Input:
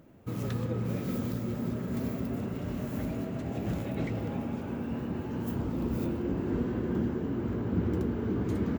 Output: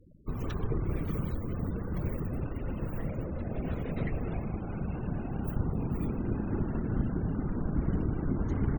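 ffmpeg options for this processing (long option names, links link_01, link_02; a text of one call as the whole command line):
ffmpeg -i in.wav -af "afftfilt=real='hypot(re,im)*cos(2*PI*random(0))':imag='hypot(re,im)*sin(2*PI*random(1))':win_size=512:overlap=0.75,afftfilt=real='re*gte(hypot(re,im),0.00224)':imag='im*gte(hypot(re,im),0.00224)':win_size=1024:overlap=0.75,afreqshift=-110,volume=6.5dB" out.wav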